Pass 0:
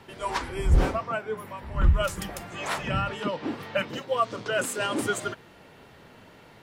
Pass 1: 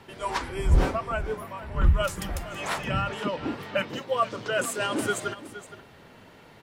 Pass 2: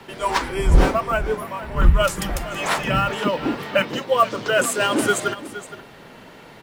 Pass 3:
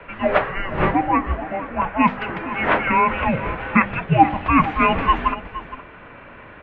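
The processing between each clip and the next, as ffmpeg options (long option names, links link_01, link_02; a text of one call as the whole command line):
ffmpeg -i in.wav -af "aecho=1:1:467:0.188" out.wav
ffmpeg -i in.wav -filter_complex "[0:a]equalizer=frequency=86:width=2.4:gain=-11,acrossover=split=140|830|4800[link_01][link_02][link_03][link_04];[link_03]acrusher=bits=6:mode=log:mix=0:aa=0.000001[link_05];[link_01][link_02][link_05][link_04]amix=inputs=4:normalize=0,volume=8dB" out.wav
ffmpeg -i in.wav -af "tiltshelf=frequency=710:gain=-3.5,bandreject=frequency=51.61:width_type=h:width=4,bandreject=frequency=103.22:width_type=h:width=4,bandreject=frequency=154.83:width_type=h:width=4,bandreject=frequency=206.44:width_type=h:width=4,bandreject=frequency=258.05:width_type=h:width=4,bandreject=frequency=309.66:width_type=h:width=4,bandreject=frequency=361.27:width_type=h:width=4,bandreject=frequency=412.88:width_type=h:width=4,bandreject=frequency=464.49:width_type=h:width=4,bandreject=frequency=516.1:width_type=h:width=4,bandreject=frequency=567.71:width_type=h:width=4,bandreject=frequency=619.32:width_type=h:width=4,bandreject=frequency=670.93:width_type=h:width=4,bandreject=frequency=722.54:width_type=h:width=4,bandreject=frequency=774.15:width_type=h:width=4,bandreject=frequency=825.76:width_type=h:width=4,bandreject=frequency=877.37:width_type=h:width=4,bandreject=frequency=928.98:width_type=h:width=4,bandreject=frequency=980.59:width_type=h:width=4,bandreject=frequency=1032.2:width_type=h:width=4,bandreject=frequency=1083.81:width_type=h:width=4,bandreject=frequency=1135.42:width_type=h:width=4,bandreject=frequency=1187.03:width_type=h:width=4,highpass=frequency=380:width_type=q:width=0.5412,highpass=frequency=380:width_type=q:width=1.307,lowpass=frequency=2900:width_type=q:width=0.5176,lowpass=frequency=2900:width_type=q:width=0.7071,lowpass=frequency=2900:width_type=q:width=1.932,afreqshift=-370,volume=3.5dB" out.wav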